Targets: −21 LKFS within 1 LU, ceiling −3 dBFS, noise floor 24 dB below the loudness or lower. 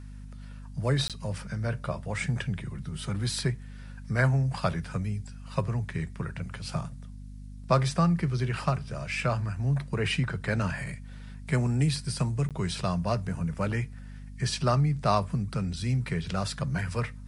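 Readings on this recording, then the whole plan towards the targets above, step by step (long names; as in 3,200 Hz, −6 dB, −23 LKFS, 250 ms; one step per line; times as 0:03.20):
number of dropouts 2; longest dropout 17 ms; mains hum 50 Hz; hum harmonics up to 250 Hz; level of the hum −40 dBFS; integrated loudness −29.5 LKFS; sample peak −9.5 dBFS; target loudness −21.0 LKFS
→ repair the gap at 0:01.08/0:12.49, 17 ms
mains-hum notches 50/100/150/200/250 Hz
level +8.5 dB
brickwall limiter −3 dBFS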